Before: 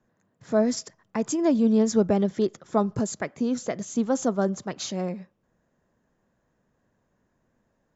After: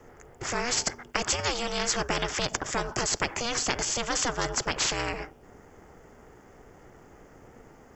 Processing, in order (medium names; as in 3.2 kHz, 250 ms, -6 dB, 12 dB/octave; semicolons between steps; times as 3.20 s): Butterworth band-stop 3.9 kHz, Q 4.2; ring modulator 240 Hz; spectrum-flattening compressor 4:1; trim +4.5 dB